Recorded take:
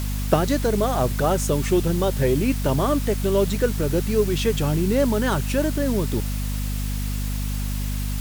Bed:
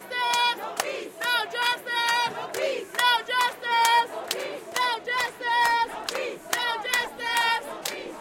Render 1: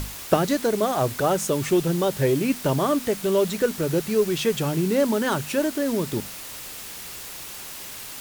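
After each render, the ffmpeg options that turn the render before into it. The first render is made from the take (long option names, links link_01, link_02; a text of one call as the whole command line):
ffmpeg -i in.wav -af "bandreject=frequency=50:width_type=h:width=6,bandreject=frequency=100:width_type=h:width=6,bandreject=frequency=150:width_type=h:width=6,bandreject=frequency=200:width_type=h:width=6,bandreject=frequency=250:width_type=h:width=6" out.wav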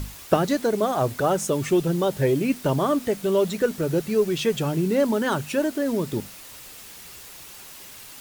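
ffmpeg -i in.wav -af "afftdn=noise_reduction=6:noise_floor=-37" out.wav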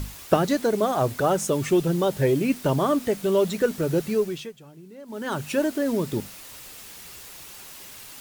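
ffmpeg -i in.wav -filter_complex "[0:a]asplit=3[link_01][link_02][link_03];[link_01]atrim=end=4.53,asetpts=PTS-STARTPTS,afade=type=out:start_time=4.08:duration=0.45:silence=0.0749894[link_04];[link_02]atrim=start=4.53:end=5.06,asetpts=PTS-STARTPTS,volume=-22.5dB[link_05];[link_03]atrim=start=5.06,asetpts=PTS-STARTPTS,afade=type=in:duration=0.45:silence=0.0749894[link_06];[link_04][link_05][link_06]concat=n=3:v=0:a=1" out.wav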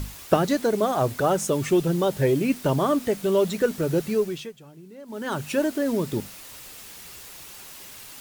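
ffmpeg -i in.wav -af anull out.wav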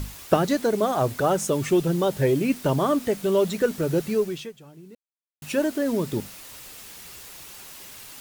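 ffmpeg -i in.wav -filter_complex "[0:a]asplit=3[link_01][link_02][link_03];[link_01]atrim=end=4.95,asetpts=PTS-STARTPTS,afade=type=out:start_time=4.946:duration=0.004:curve=hsin[link_04];[link_02]atrim=start=4.95:end=5.42,asetpts=PTS-STARTPTS,volume=0[link_05];[link_03]atrim=start=5.42,asetpts=PTS-STARTPTS,afade=type=in:duration=0.004:curve=hsin[link_06];[link_04][link_05][link_06]concat=n=3:v=0:a=1" out.wav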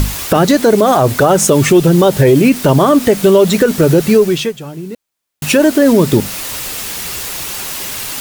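ffmpeg -i in.wav -filter_complex "[0:a]asplit=2[link_01][link_02];[link_02]acompressor=threshold=-30dB:ratio=6,volume=0.5dB[link_03];[link_01][link_03]amix=inputs=2:normalize=0,alimiter=level_in=13.5dB:limit=-1dB:release=50:level=0:latency=1" out.wav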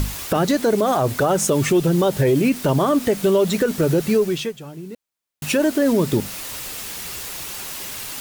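ffmpeg -i in.wav -af "volume=-8.5dB" out.wav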